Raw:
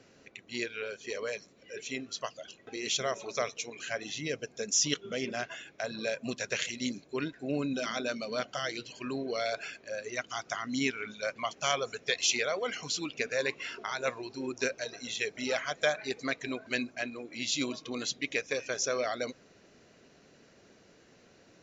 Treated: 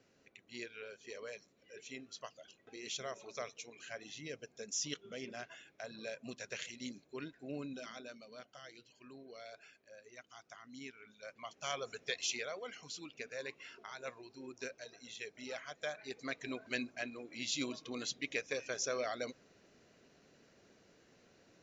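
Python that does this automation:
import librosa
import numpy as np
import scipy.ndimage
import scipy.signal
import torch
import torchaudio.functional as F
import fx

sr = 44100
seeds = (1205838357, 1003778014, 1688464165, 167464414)

y = fx.gain(x, sr, db=fx.line((7.61, -11.0), (8.3, -19.0), (11.04, -19.0), (11.95, -7.0), (12.73, -13.0), (15.85, -13.0), (16.51, -6.0)))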